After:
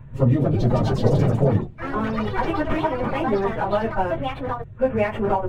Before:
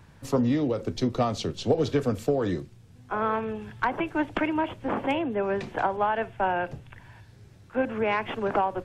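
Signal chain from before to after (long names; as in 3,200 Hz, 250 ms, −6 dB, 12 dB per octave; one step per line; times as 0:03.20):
adaptive Wiener filter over 9 samples
bass and treble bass +9 dB, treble −6 dB
convolution reverb RT60 0.25 s, pre-delay 4 ms, DRR −1.5 dB
time stretch by phase vocoder 0.62×
delay with pitch and tempo change per echo 285 ms, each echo +4 semitones, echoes 3, each echo −6 dB
high-shelf EQ 8,800 Hz +8.5 dB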